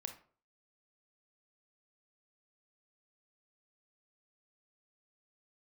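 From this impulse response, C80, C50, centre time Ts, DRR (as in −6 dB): 15.0 dB, 9.5 dB, 13 ms, 6.0 dB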